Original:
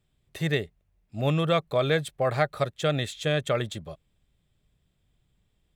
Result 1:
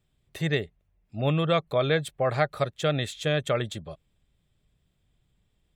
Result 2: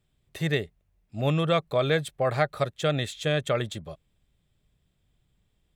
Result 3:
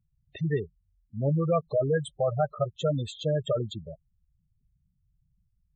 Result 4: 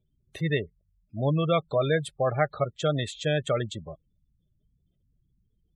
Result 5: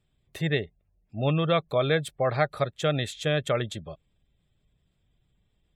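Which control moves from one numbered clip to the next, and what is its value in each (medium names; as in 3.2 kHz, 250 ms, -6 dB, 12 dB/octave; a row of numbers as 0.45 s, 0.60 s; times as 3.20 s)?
spectral gate, under each frame's peak: -45 dB, -60 dB, -10 dB, -20 dB, -35 dB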